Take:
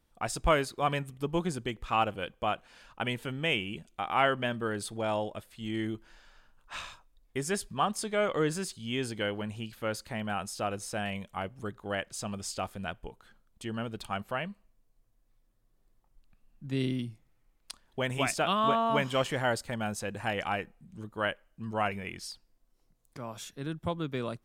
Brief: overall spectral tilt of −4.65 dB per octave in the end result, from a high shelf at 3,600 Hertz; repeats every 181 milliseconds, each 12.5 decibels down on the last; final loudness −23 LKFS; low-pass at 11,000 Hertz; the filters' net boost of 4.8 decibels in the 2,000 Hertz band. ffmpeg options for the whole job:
ffmpeg -i in.wav -af "lowpass=11000,equalizer=frequency=2000:width_type=o:gain=7.5,highshelf=frequency=3600:gain=-4.5,aecho=1:1:181|362|543:0.237|0.0569|0.0137,volume=8dB" out.wav

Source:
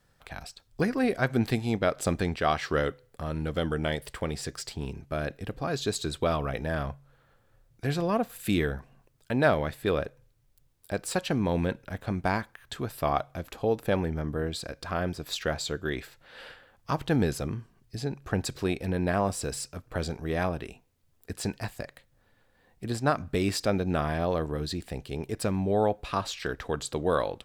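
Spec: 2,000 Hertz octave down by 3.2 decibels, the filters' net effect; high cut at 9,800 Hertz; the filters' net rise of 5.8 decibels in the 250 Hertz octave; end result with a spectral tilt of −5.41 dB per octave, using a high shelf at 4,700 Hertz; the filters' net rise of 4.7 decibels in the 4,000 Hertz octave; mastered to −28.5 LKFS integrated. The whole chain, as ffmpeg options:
ffmpeg -i in.wav -af "lowpass=9800,equalizer=frequency=250:width_type=o:gain=7.5,equalizer=frequency=2000:width_type=o:gain=-6.5,equalizer=frequency=4000:width_type=o:gain=3.5,highshelf=frequency=4700:gain=7.5,volume=-1.5dB" out.wav

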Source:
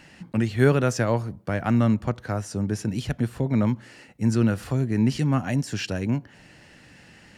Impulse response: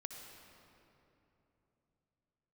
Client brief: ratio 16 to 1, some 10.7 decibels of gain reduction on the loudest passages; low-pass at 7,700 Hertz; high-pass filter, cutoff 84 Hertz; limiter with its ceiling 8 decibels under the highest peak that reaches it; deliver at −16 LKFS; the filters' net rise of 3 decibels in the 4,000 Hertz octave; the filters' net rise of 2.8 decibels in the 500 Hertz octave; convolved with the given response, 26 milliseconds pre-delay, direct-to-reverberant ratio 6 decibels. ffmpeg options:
-filter_complex "[0:a]highpass=84,lowpass=7700,equalizer=frequency=500:width_type=o:gain=3.5,equalizer=frequency=4000:width_type=o:gain=4.5,acompressor=threshold=-21dB:ratio=16,alimiter=limit=-19.5dB:level=0:latency=1,asplit=2[link_01][link_02];[1:a]atrim=start_sample=2205,adelay=26[link_03];[link_02][link_03]afir=irnorm=-1:irlink=0,volume=-3dB[link_04];[link_01][link_04]amix=inputs=2:normalize=0,volume=13dB"

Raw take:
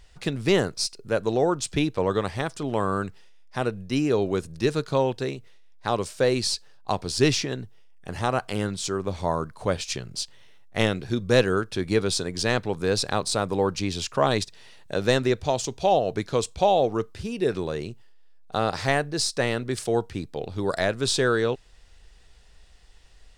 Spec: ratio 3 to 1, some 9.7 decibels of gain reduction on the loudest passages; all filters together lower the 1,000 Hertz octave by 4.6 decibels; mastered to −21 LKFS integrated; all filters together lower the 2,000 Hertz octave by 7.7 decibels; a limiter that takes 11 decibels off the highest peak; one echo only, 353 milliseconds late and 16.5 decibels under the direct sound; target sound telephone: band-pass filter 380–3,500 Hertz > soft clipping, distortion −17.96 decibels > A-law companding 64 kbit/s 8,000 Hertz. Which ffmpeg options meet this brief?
ffmpeg -i in.wav -af "equalizer=frequency=1000:width_type=o:gain=-4.5,equalizer=frequency=2000:width_type=o:gain=-8,acompressor=threshold=-29dB:ratio=3,alimiter=level_in=2dB:limit=-24dB:level=0:latency=1,volume=-2dB,highpass=380,lowpass=3500,aecho=1:1:353:0.15,asoftclip=threshold=-31dB,volume=22dB" -ar 8000 -c:a pcm_alaw out.wav

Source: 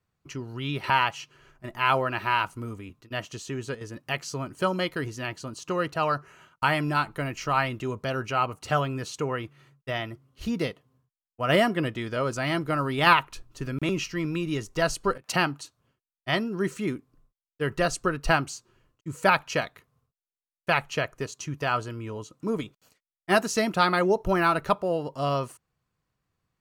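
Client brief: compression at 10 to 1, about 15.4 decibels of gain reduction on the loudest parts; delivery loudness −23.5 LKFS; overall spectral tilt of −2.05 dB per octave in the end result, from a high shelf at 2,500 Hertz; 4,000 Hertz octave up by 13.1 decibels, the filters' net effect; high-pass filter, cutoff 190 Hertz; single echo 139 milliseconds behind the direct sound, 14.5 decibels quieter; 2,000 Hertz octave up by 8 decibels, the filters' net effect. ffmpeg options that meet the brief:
ffmpeg -i in.wav -af "highpass=190,equalizer=frequency=2000:width_type=o:gain=4,highshelf=frequency=2500:gain=8.5,equalizer=frequency=4000:width_type=o:gain=9,acompressor=threshold=-22dB:ratio=10,aecho=1:1:139:0.188,volume=4.5dB" out.wav

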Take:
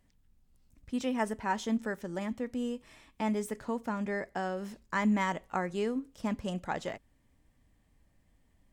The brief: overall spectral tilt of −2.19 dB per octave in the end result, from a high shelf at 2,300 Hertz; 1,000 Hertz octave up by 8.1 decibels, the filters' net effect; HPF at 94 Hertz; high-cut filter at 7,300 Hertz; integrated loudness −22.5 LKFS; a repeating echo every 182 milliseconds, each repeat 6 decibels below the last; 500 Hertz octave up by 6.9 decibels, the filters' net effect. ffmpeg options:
ffmpeg -i in.wav -af "highpass=94,lowpass=7300,equalizer=frequency=500:width_type=o:gain=6.5,equalizer=frequency=1000:width_type=o:gain=8.5,highshelf=frequency=2300:gain=-6,aecho=1:1:182|364|546|728|910|1092:0.501|0.251|0.125|0.0626|0.0313|0.0157,volume=6dB" out.wav

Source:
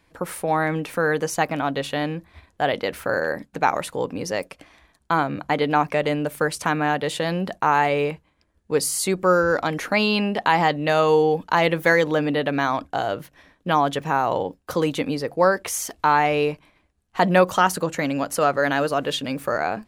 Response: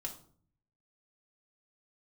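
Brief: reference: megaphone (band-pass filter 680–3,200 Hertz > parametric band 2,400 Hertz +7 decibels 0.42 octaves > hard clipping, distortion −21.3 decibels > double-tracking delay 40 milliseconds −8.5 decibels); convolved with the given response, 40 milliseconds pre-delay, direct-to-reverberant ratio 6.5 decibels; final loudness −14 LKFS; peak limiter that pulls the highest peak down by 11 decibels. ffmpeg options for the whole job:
-filter_complex "[0:a]alimiter=limit=-15dB:level=0:latency=1,asplit=2[link_01][link_02];[1:a]atrim=start_sample=2205,adelay=40[link_03];[link_02][link_03]afir=irnorm=-1:irlink=0,volume=-5dB[link_04];[link_01][link_04]amix=inputs=2:normalize=0,highpass=680,lowpass=3200,equalizer=frequency=2400:width_type=o:width=0.42:gain=7,asoftclip=type=hard:threshold=-18.5dB,asplit=2[link_05][link_06];[link_06]adelay=40,volume=-8.5dB[link_07];[link_05][link_07]amix=inputs=2:normalize=0,volume=13.5dB"

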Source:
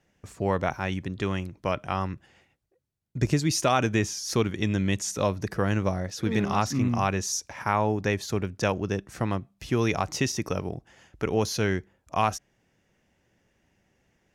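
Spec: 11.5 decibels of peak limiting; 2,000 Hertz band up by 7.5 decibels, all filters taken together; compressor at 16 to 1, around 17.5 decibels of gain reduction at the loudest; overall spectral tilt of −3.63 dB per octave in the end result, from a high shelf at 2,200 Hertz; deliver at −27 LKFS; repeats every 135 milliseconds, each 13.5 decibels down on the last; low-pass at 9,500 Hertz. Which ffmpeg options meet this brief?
ffmpeg -i in.wav -af "lowpass=9500,equalizer=frequency=2000:width_type=o:gain=7,highshelf=frequency=2200:gain=4.5,acompressor=threshold=-34dB:ratio=16,alimiter=level_in=6dB:limit=-24dB:level=0:latency=1,volume=-6dB,aecho=1:1:135|270:0.211|0.0444,volume=14.5dB" out.wav

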